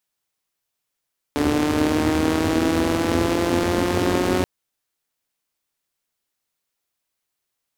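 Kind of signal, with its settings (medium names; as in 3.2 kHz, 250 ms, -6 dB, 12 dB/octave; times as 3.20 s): four-cylinder engine model, changing speed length 3.08 s, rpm 4400, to 5500, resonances 91/270 Hz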